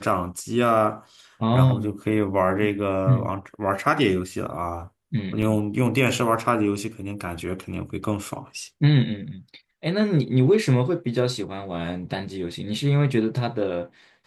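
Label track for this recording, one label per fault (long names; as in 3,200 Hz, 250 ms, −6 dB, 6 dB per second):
5.420000	5.420000	drop-out 5 ms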